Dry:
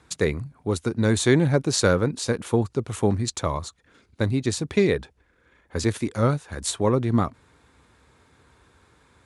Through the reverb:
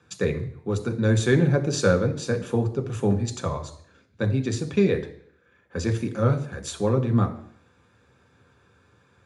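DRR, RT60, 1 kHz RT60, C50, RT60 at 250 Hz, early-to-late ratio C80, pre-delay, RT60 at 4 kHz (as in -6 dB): 4.5 dB, 0.65 s, 0.60 s, 12.5 dB, 0.65 s, 15.5 dB, 3 ms, 0.60 s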